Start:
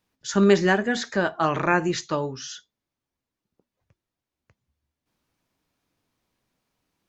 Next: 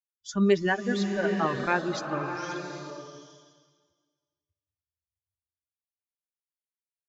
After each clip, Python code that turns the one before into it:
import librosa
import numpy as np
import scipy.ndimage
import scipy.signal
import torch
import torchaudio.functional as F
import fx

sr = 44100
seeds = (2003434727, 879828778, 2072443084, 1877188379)

y = fx.bin_expand(x, sr, power=2.0)
y = scipy.signal.sosfilt(scipy.signal.butter(2, 6200.0, 'lowpass', fs=sr, output='sos'), y)
y = fx.rev_bloom(y, sr, seeds[0], attack_ms=790, drr_db=5.0)
y = y * 10.0 ** (-2.5 / 20.0)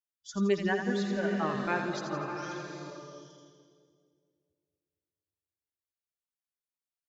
y = fx.echo_split(x, sr, split_hz=540.0, low_ms=230, high_ms=83, feedback_pct=52, wet_db=-7.0)
y = y * 10.0 ** (-5.5 / 20.0)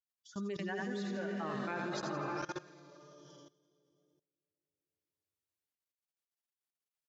y = scipy.signal.sosfilt(scipy.signal.butter(2, 83.0, 'highpass', fs=sr, output='sos'), x)
y = fx.level_steps(y, sr, step_db=19)
y = fx.wow_flutter(y, sr, seeds[1], rate_hz=2.1, depth_cents=22.0)